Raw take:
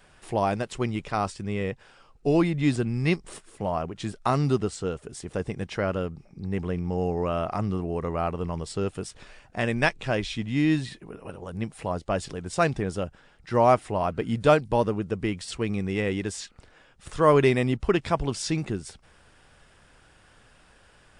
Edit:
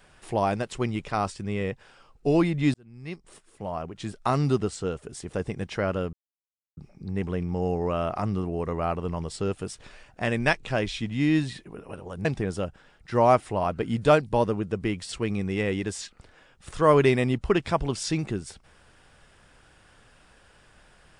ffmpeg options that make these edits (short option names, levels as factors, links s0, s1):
-filter_complex "[0:a]asplit=4[s0][s1][s2][s3];[s0]atrim=end=2.74,asetpts=PTS-STARTPTS,afade=t=out:st=2.736:d=0.004:c=hsin[s4];[s1]atrim=start=2.74:end=6.13,asetpts=PTS-STARTPTS,afade=t=in:d=1.68,afade=t=out:st=3.386:d=0.004:c=hsin,apad=pad_dur=0.64[s5];[s2]atrim=start=6.13:end=11.612,asetpts=PTS-STARTPTS,afade=t=in:d=0.004:c=hsin[s6];[s3]atrim=start=12.638[s7];[s4][s5][s6]concat=n=3:v=0:a=1[s8];[s8][s7]acrossfade=d=0.004:c1=hsin:c2=hsin"